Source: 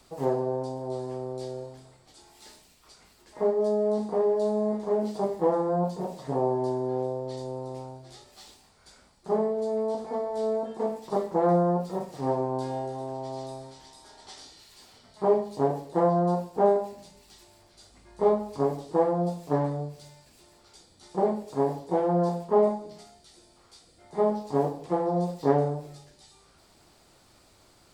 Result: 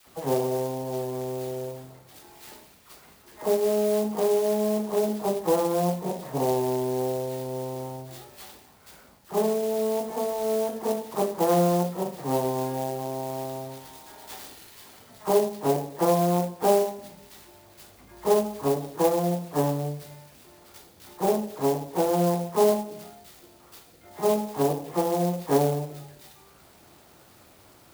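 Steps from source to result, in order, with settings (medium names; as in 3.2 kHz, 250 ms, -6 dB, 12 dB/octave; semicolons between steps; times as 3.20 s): high-pass 66 Hz; in parallel at -1 dB: compression, threshold -37 dBFS, peak gain reduction 19 dB; on the sum: phase dispersion lows, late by 62 ms, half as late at 1.4 kHz; sampling jitter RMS 0.05 ms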